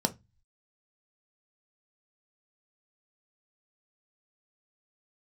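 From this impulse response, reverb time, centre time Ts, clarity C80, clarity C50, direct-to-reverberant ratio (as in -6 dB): 0.20 s, 5 ms, 31.0 dB, 20.0 dB, 6.0 dB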